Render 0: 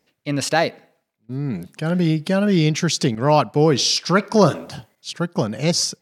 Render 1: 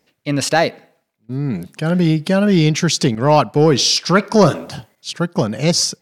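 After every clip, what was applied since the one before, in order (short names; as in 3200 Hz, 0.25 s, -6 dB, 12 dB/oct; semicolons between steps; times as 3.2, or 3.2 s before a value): soft clip -4 dBFS, distortion -24 dB; gain +4 dB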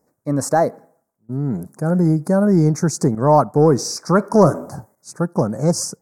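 Chebyshev band-stop 1100–7800 Hz, order 2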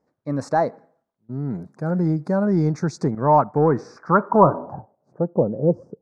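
low-pass sweep 3400 Hz -> 460 Hz, 2.97–5.56; dynamic EQ 910 Hz, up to +5 dB, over -32 dBFS, Q 4.8; gain -5 dB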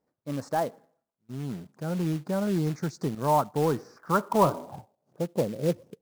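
short-mantissa float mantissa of 2-bit; gain -7.5 dB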